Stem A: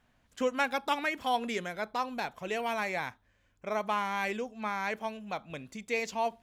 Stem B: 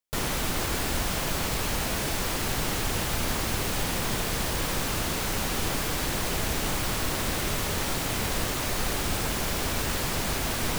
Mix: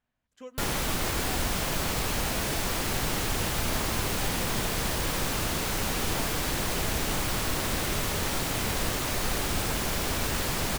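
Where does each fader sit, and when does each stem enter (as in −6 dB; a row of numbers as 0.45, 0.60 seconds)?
−14.0, −0.5 decibels; 0.00, 0.45 seconds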